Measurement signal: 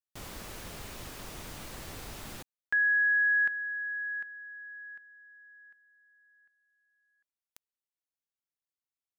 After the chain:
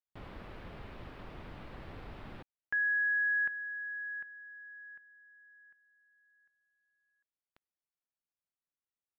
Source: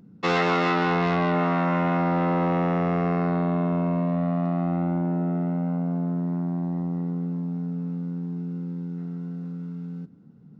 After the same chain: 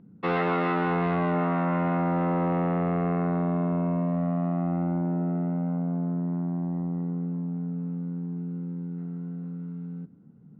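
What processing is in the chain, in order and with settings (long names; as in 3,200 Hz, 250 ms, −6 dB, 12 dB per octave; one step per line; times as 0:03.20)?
high-frequency loss of the air 420 metres
level −1.5 dB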